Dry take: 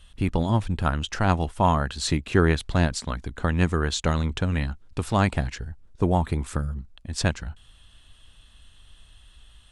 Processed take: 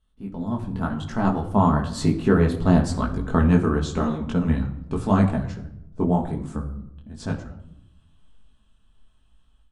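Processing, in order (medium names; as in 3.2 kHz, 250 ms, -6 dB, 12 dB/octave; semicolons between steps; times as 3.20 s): Doppler pass-by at 3.25 s, 12 m/s, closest 6.4 m; peaking EQ 250 Hz +7 dB 1.3 oct; level rider gain up to 13 dB; resonant high shelf 1.6 kHz -6 dB, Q 1.5; simulated room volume 2400 m³, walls furnished, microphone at 1.5 m; detune thickener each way 33 cents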